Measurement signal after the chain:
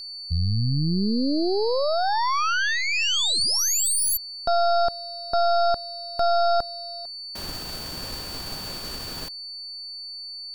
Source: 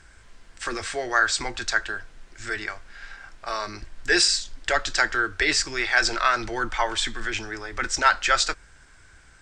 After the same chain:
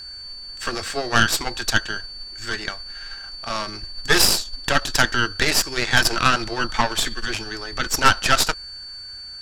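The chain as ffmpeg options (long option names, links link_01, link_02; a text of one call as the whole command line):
ffmpeg -i in.wav -af "aeval=exprs='val(0)+0.0158*sin(2*PI*4500*n/s)':channel_layout=same,aeval=exprs='0.596*(cos(1*acos(clip(val(0)/0.596,-1,1)))-cos(1*PI/2))+0.0119*(cos(3*acos(clip(val(0)/0.596,-1,1)))-cos(3*PI/2))+0.133*(cos(6*acos(clip(val(0)/0.596,-1,1)))-cos(6*PI/2))':channel_layout=same,equalizer=frequency=2100:width_type=o:width=0.3:gain=-4.5,volume=2.5dB" out.wav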